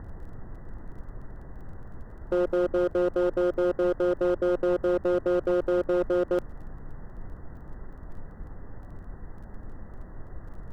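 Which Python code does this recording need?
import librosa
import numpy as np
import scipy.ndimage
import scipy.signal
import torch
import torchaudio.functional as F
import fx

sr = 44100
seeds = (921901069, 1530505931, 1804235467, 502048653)

y = fx.fix_declip(x, sr, threshold_db=-20.0)
y = fx.fix_declick_ar(y, sr, threshold=6.5)
y = fx.noise_reduce(y, sr, print_start_s=9.04, print_end_s=9.54, reduce_db=30.0)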